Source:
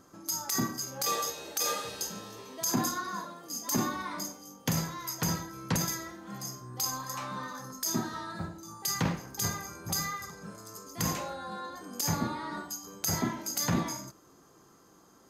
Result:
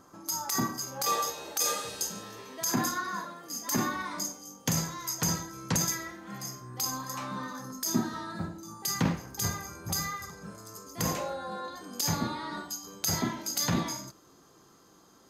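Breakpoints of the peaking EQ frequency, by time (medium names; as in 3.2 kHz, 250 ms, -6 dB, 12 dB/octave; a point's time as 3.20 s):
peaking EQ +5.5 dB 0.9 oct
950 Hz
from 1.59 s 8.4 kHz
from 2.23 s 1.8 kHz
from 4.05 s 6.9 kHz
from 5.92 s 2.1 kHz
from 6.80 s 240 Hz
from 9.13 s 75 Hz
from 10.98 s 540 Hz
from 11.68 s 3.8 kHz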